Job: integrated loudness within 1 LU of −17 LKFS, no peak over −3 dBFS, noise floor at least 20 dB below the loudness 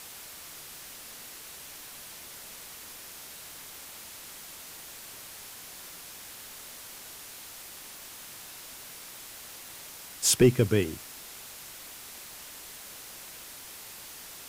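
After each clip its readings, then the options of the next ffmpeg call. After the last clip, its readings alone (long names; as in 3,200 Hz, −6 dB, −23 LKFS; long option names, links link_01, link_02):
background noise floor −46 dBFS; target noise floor −55 dBFS; integrated loudness −34.5 LKFS; sample peak −9.5 dBFS; target loudness −17.0 LKFS
→ -af "afftdn=noise_reduction=9:noise_floor=-46"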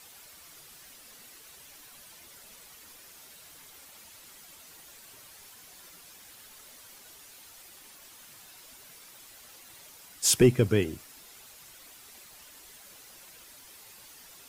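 background noise floor −52 dBFS; integrated loudness −24.5 LKFS; sample peak −9.5 dBFS; target loudness −17.0 LKFS
→ -af "volume=7.5dB,alimiter=limit=-3dB:level=0:latency=1"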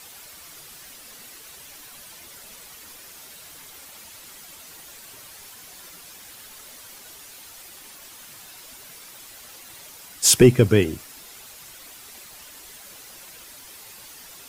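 integrated loudness −17.0 LKFS; sample peak −3.0 dBFS; background noise floor −45 dBFS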